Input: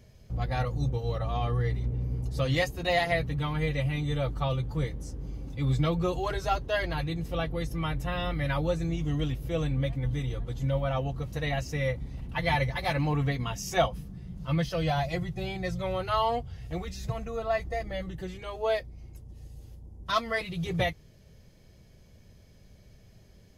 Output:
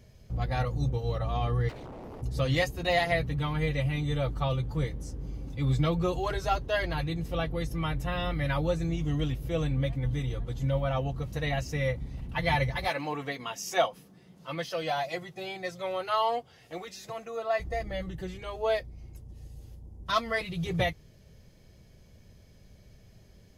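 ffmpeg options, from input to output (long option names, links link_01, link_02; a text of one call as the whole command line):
ffmpeg -i in.wav -filter_complex "[0:a]asplit=3[link_01][link_02][link_03];[link_01]afade=type=out:start_time=1.68:duration=0.02[link_04];[link_02]aeval=exprs='0.0126*(abs(mod(val(0)/0.0126+3,4)-2)-1)':channel_layout=same,afade=type=in:start_time=1.68:duration=0.02,afade=type=out:start_time=2.21:duration=0.02[link_05];[link_03]afade=type=in:start_time=2.21:duration=0.02[link_06];[link_04][link_05][link_06]amix=inputs=3:normalize=0,asettb=1/sr,asplit=3[link_07][link_08][link_09];[link_07]atrim=end=12.884[link_10];[link_08]atrim=start=12.88:end=17.6,asetpts=PTS-STARTPTS,afade=type=in:duration=0.004:curve=qsin,afade=type=out:start_time=4.716:duration=0.004:curve=qsin,highpass=350[link_11];[link_09]atrim=start=17.596[link_12];[link_10][link_11]acrossfade=duration=0.004:curve1=hsin:curve2=qsin[link_13];[link_13][link_12]acrossfade=duration=0.004:curve1=qsin:curve2=hsin" out.wav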